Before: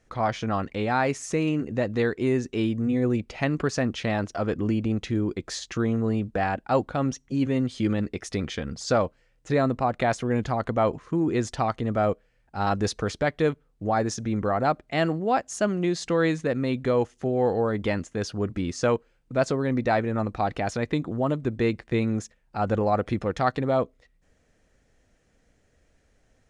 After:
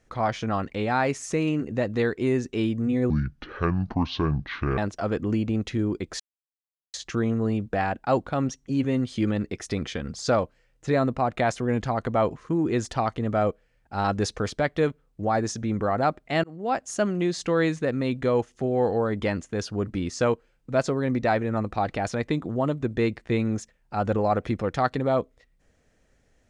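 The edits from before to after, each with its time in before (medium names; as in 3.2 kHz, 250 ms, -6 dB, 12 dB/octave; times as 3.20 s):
3.10–4.14 s: speed 62%
5.56 s: insert silence 0.74 s
15.06–15.43 s: fade in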